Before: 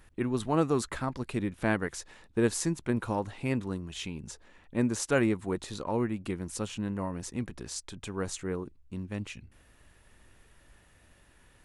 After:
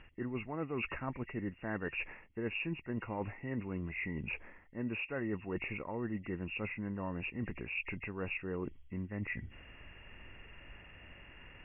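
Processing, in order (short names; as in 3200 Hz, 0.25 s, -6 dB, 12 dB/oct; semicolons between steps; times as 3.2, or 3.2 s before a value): nonlinear frequency compression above 1800 Hz 4:1; reverse; compressor 6:1, threshold -41 dBFS, peak gain reduction 19.5 dB; reverse; gain +5 dB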